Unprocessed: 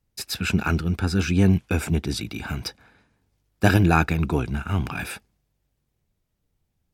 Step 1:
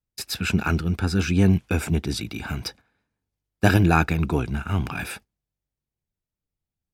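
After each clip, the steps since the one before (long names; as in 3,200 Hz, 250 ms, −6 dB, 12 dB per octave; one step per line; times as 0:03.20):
noise gate −43 dBFS, range −14 dB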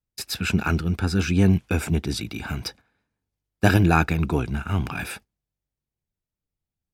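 no processing that can be heard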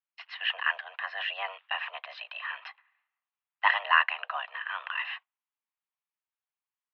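single-sideband voice off tune +290 Hz 600–2,900 Hz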